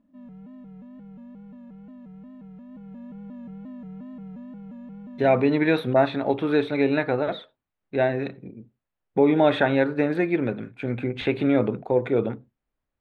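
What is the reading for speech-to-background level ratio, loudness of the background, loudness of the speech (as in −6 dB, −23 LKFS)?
19.0 dB, −42.0 LKFS, −23.0 LKFS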